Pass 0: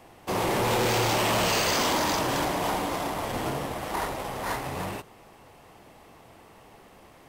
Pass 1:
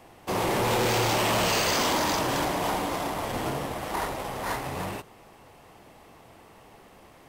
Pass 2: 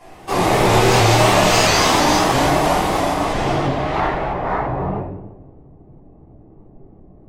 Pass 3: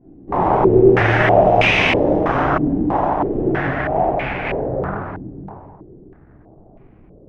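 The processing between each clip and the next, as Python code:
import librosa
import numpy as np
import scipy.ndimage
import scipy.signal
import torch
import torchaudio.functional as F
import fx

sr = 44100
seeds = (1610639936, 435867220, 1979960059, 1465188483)

y1 = x
y2 = fx.filter_sweep_lowpass(y1, sr, from_hz=11000.0, to_hz=310.0, start_s=3.03, end_s=5.58, q=0.87)
y2 = fx.room_shoebox(y2, sr, seeds[0], volume_m3=150.0, walls='mixed', distance_m=3.4)
y2 = fx.vibrato_shape(y2, sr, shape='saw_up', rate_hz=3.0, depth_cents=100.0)
y2 = y2 * librosa.db_to_amplitude(-1.5)
y3 = fx.lower_of_two(y2, sr, delay_ms=0.33)
y3 = fx.echo_feedback(y3, sr, ms=548, feedback_pct=16, wet_db=-11.5)
y3 = fx.filter_held_lowpass(y3, sr, hz=3.1, low_hz=280.0, high_hz=2400.0)
y3 = y3 * librosa.db_to_amplitude(-2.5)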